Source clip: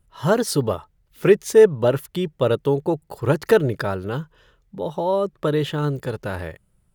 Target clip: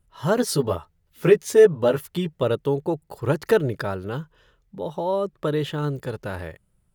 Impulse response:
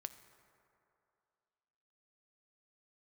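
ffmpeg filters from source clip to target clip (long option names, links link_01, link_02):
-filter_complex "[0:a]asettb=1/sr,asplit=3[link_01][link_02][link_03];[link_01]atrim=end=0.364[link_04];[link_02]atrim=start=0.36:end=2.43,asetpts=PTS-STARTPTS,afade=type=in:duration=0.004:curve=qsin,afade=type=out:start_time=2.066:duration=0.004:curve=qsin,asplit=2[link_05][link_06];[link_06]adelay=12,volume=-2.5dB[link_07];[link_05][link_07]amix=inputs=2:normalize=0,atrim=end_sample=91287[link_08];[link_03]atrim=start=2.426[link_09];[link_04][link_08]acrossfade=duration=0.004:curve1=hsin:curve2=qsin[link_10];[link_10][link_09]acrossfade=duration=0.004:curve1=qsin:curve2=hsin,volume=-3dB"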